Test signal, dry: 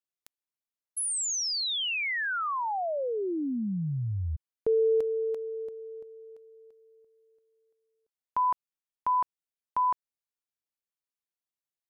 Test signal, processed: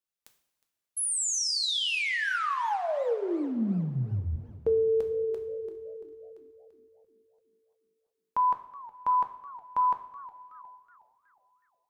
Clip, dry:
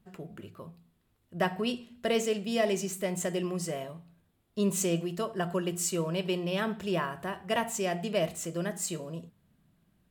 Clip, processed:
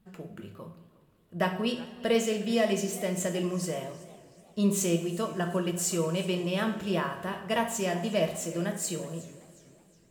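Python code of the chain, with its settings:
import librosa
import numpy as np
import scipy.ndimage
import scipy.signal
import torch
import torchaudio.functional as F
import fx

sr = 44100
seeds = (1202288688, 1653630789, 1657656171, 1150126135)

y = fx.rev_double_slope(x, sr, seeds[0], early_s=0.54, late_s=3.2, knee_db=-18, drr_db=5.0)
y = fx.echo_warbled(y, sr, ms=370, feedback_pct=41, rate_hz=2.8, cents=218, wet_db=-20.0)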